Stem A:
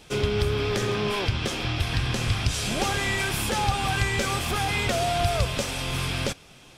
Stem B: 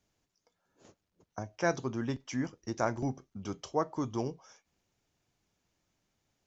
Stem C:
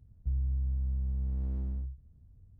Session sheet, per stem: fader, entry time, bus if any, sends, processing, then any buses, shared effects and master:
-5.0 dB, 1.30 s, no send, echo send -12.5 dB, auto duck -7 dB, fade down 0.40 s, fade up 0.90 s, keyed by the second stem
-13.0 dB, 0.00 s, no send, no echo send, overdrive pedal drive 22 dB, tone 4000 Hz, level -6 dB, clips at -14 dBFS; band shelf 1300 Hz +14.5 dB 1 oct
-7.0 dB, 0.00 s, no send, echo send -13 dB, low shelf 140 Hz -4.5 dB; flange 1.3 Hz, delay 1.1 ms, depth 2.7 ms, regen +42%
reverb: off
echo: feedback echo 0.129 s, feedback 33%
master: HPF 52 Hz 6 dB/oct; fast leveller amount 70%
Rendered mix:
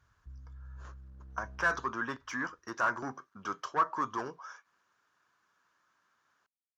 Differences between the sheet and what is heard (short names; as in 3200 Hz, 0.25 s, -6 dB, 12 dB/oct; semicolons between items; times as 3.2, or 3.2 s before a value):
stem A: muted; master: missing fast leveller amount 70%